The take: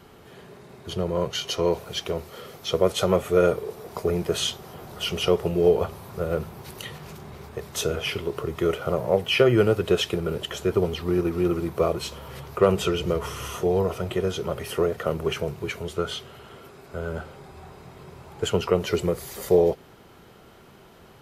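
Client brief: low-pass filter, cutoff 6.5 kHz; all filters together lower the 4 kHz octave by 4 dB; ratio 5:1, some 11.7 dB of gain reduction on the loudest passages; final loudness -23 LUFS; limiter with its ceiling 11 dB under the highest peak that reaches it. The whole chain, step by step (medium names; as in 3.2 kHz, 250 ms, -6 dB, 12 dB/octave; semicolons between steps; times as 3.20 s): low-pass 6.5 kHz; peaking EQ 4 kHz -5.5 dB; compression 5:1, threshold -27 dBFS; trim +13 dB; peak limiter -12 dBFS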